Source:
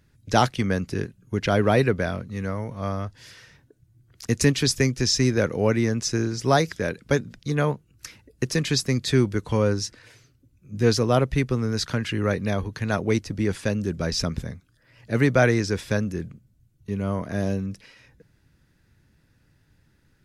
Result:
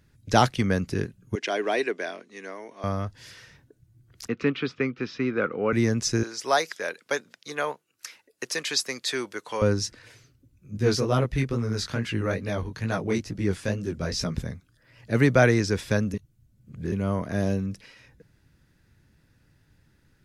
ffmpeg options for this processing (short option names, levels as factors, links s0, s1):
-filter_complex "[0:a]asettb=1/sr,asplit=3[s0][s1][s2];[s0]atrim=end=1.354[s3];[s1]atrim=start=1.35:end=2.84,asetpts=PTS-STARTPTS,afade=t=in:d=0.004:c=qsin,afade=t=out:st=1.486:d=0.004:c=qsin,highpass=f=350:w=0.5412,highpass=f=350:w=1.3066,equalizer=f=520:t=q:w=4:g=-10,equalizer=f=880:t=q:w=4:g=-5,equalizer=f=1300:t=q:w=4:g=-9,equalizer=f=4300:t=q:w=4:g=-4,lowpass=f=8800:w=0.5412,lowpass=f=8800:w=1.3066[s4];[s2]atrim=start=2.836[s5];[s3][s4]acrossfade=d=0.004:c1=hsin:c2=qsin[s6];[s6][s5]acrossfade=d=0.004:c1=qsin:c2=hsin,asettb=1/sr,asplit=3[s7][s8][s9];[s7]atrim=end=4.284[s10];[s8]atrim=start=4.28:end=5.73,asetpts=PTS-STARTPTS,afade=t=in:d=0.004:c=qsin,afade=t=out:st=1.446:d=0.004:c=qsin,highpass=270,equalizer=f=360:t=q:w=4:g=-3,equalizer=f=620:t=q:w=4:g=-8,equalizer=f=910:t=q:w=4:g=-5,equalizer=f=1300:t=q:w=4:g=9,equalizer=f=1800:t=q:w=4:g=-7,lowpass=f=2800:w=0.5412,lowpass=f=2800:w=1.3066[s11];[s9]atrim=start=5.726[s12];[s10][s11]acrossfade=d=0.004:c1=hsin:c2=qsin[s13];[s13][s12]acrossfade=d=0.004:c1=qsin:c2=hsin,asettb=1/sr,asplit=3[s14][s15][s16];[s14]atrim=end=6.234[s17];[s15]atrim=start=6.23:end=9.62,asetpts=PTS-STARTPTS,afade=t=in:d=0.004:c=qsin,afade=t=out:st=3.386:d=0.004:c=qsin,highpass=600[s18];[s16]atrim=start=9.616[s19];[s17][s18]acrossfade=d=0.004:c1=hsin:c2=qsin[s20];[s20][s19]acrossfade=d=0.004:c1=qsin:c2=hsin,asettb=1/sr,asplit=3[s21][s22][s23];[s21]atrim=end=10.774[s24];[s22]atrim=start=10.77:end=14.35,asetpts=PTS-STARTPTS,afade=t=in:d=0.004:c=qsin,afade=t=out:st=3.576:d=0.004:c=qsin,flanger=delay=16:depth=6.9:speed=2.3[s25];[s23]atrim=start=14.346[s26];[s24][s25]acrossfade=d=0.004:c1=hsin:c2=qsin[s27];[s27][s26]acrossfade=d=0.004:c1=qsin:c2=hsin,asplit=3[s28][s29][s30];[s28]atrim=end=16.142[s31];[s29]atrim=start=16.138:end=16.922,asetpts=PTS-STARTPTS,areverse[s32];[s30]atrim=start=16.918[s33];[s31][s32]acrossfade=d=0.004:c1=hsin:c2=hsin[s34];[s34][s33]acrossfade=d=0.004:c1=hsin:c2=hsin"